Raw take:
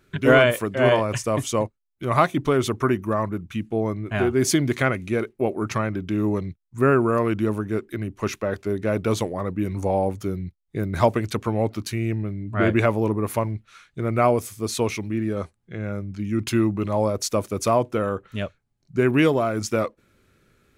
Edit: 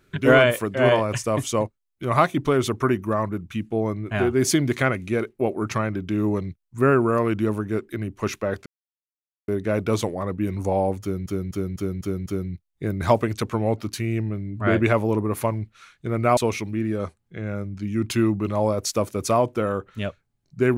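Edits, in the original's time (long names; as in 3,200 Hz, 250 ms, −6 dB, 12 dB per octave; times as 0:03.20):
0:08.66: splice in silence 0.82 s
0:10.19–0:10.44: repeat, 6 plays
0:14.30–0:14.74: remove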